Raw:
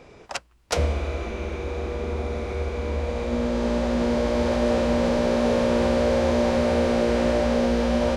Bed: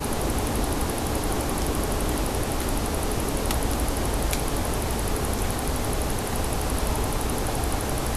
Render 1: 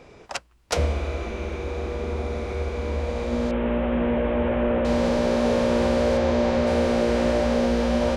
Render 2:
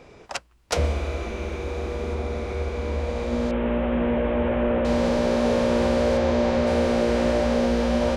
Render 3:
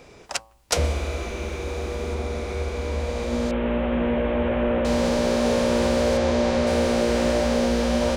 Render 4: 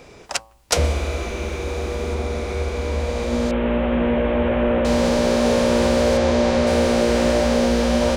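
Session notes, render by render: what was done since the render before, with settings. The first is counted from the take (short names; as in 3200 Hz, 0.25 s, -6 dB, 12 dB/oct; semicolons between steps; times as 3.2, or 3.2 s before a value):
3.51–4.85 delta modulation 16 kbps, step -33.5 dBFS; 6.17–6.67 air absorption 56 m
0.84–2.15 high shelf 6900 Hz +5 dB
high shelf 5000 Hz +10.5 dB; de-hum 111.3 Hz, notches 11
gain +3.5 dB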